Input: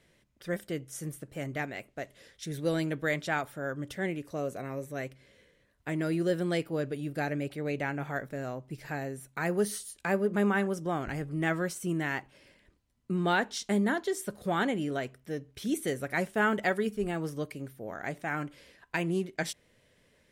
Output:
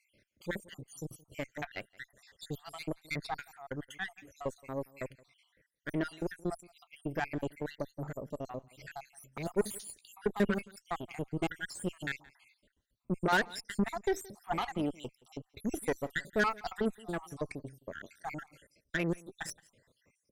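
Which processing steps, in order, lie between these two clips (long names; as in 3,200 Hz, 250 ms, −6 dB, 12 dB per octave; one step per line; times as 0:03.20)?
time-frequency cells dropped at random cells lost 70%
harmonic generator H 8 −20 dB, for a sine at −16 dBFS
single-tap delay 172 ms −23.5 dB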